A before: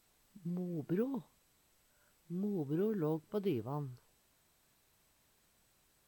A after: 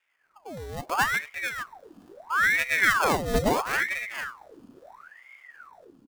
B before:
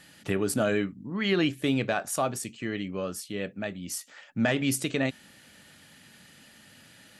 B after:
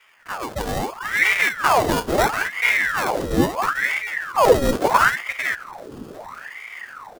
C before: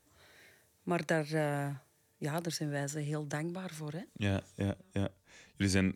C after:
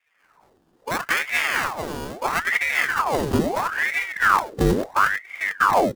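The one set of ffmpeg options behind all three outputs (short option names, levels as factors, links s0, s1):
-af "dynaudnorm=f=560:g=3:m=5.31,aresample=16000,asoftclip=type=tanh:threshold=0.237,aresample=44100,aecho=1:1:4.1:0.9,acrusher=samples=23:mix=1:aa=0.000001,equalizer=f=2300:t=o:w=0.42:g=-6.5,aecho=1:1:446:0.422,asubboost=boost=8:cutoff=120,aeval=exprs='val(0)*sin(2*PI*1200*n/s+1200*0.8/0.75*sin(2*PI*0.75*n/s))':c=same,volume=0.891"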